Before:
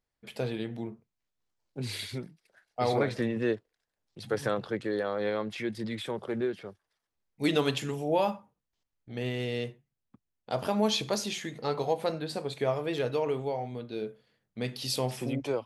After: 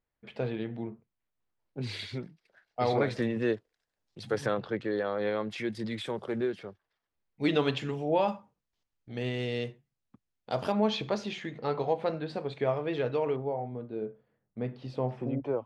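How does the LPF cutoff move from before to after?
2700 Hz
from 1.8 s 4600 Hz
from 3.03 s 8200 Hz
from 4.46 s 4000 Hz
from 5.51 s 8800 Hz
from 6.65 s 3700 Hz
from 8.28 s 7000 Hz
from 10.72 s 2900 Hz
from 13.36 s 1200 Hz

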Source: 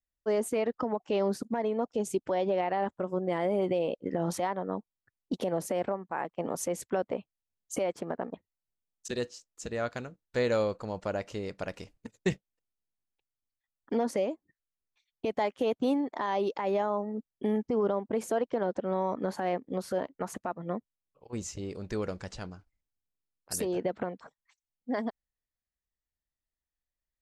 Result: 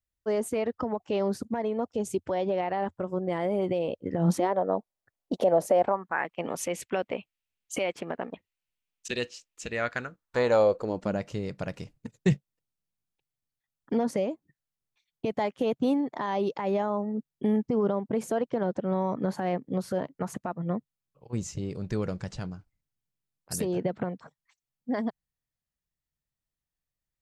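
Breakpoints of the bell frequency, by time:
bell +12 dB 1 oct
4.12 s 89 Hz
4.57 s 640 Hz
5.76 s 640 Hz
6.32 s 2600 Hz
9.64 s 2600 Hz
10.6 s 750 Hz
11.25 s 140 Hz

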